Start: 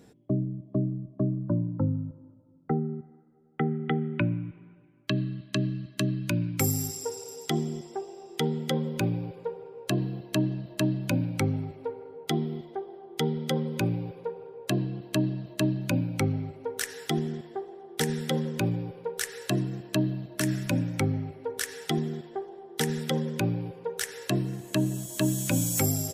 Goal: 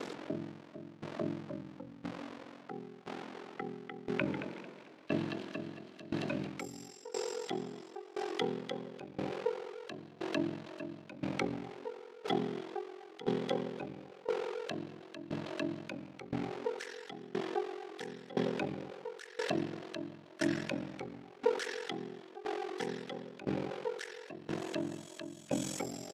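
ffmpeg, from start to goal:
-filter_complex "[0:a]aeval=exprs='val(0)+0.5*0.0158*sgn(val(0))':c=same,alimiter=limit=-20.5dB:level=0:latency=1:release=26,aeval=exprs='val(0)*sin(2*PI*22*n/s)':c=same,highpass=320,lowpass=4.3k,asplit=3[a][b][c];[a]afade=t=out:st=4.26:d=0.02[d];[b]asplit=9[e][f][g][h][i][j][k][l][m];[f]adelay=223,afreqshift=40,volume=-7dB[n];[g]adelay=446,afreqshift=80,volume=-11.4dB[o];[h]adelay=669,afreqshift=120,volume=-15.9dB[p];[i]adelay=892,afreqshift=160,volume=-20.3dB[q];[j]adelay=1115,afreqshift=200,volume=-24.7dB[r];[k]adelay=1338,afreqshift=240,volume=-29.2dB[s];[l]adelay=1561,afreqshift=280,volume=-33.6dB[t];[m]adelay=1784,afreqshift=320,volume=-38.1dB[u];[e][n][o][p][q][r][s][t][u]amix=inputs=9:normalize=0,afade=t=in:st=4.26:d=0.02,afade=t=out:st=6.47:d=0.02[v];[c]afade=t=in:st=6.47:d=0.02[w];[d][v][w]amix=inputs=3:normalize=0,aeval=exprs='val(0)*pow(10,-20*if(lt(mod(0.98*n/s,1),2*abs(0.98)/1000),1-mod(0.98*n/s,1)/(2*abs(0.98)/1000),(mod(0.98*n/s,1)-2*abs(0.98)/1000)/(1-2*abs(0.98)/1000))/20)':c=same,volume=6.5dB"

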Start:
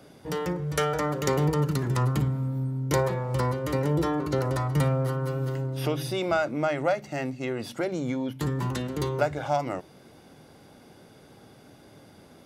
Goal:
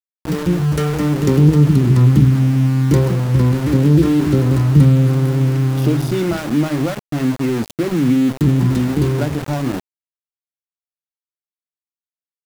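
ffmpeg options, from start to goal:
-af "lowshelf=f=430:t=q:w=1.5:g=13.5,aeval=exprs='val(0)*gte(abs(val(0)),0.075)':c=same"

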